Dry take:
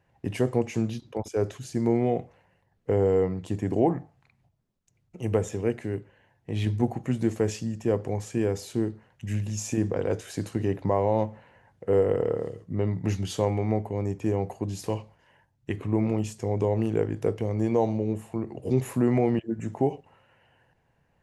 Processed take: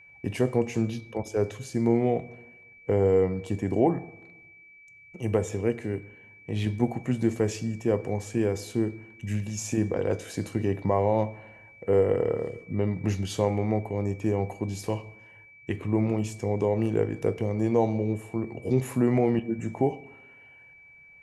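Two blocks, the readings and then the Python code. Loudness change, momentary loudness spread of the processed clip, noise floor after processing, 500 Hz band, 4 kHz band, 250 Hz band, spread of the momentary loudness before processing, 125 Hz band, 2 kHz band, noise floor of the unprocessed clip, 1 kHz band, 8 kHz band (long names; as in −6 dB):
0.0 dB, 10 LU, −53 dBFS, +0.5 dB, 0.0 dB, +0.5 dB, 9 LU, −0.5 dB, +2.5 dB, −70 dBFS, 0.0 dB, 0.0 dB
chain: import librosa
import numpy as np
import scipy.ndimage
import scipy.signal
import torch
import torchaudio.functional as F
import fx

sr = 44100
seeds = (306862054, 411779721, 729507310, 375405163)

y = fx.rev_fdn(x, sr, rt60_s=1.1, lf_ratio=1.1, hf_ratio=0.6, size_ms=86.0, drr_db=15.5)
y = y + 10.0 ** (-50.0 / 20.0) * np.sin(2.0 * np.pi * 2300.0 * np.arange(len(y)) / sr)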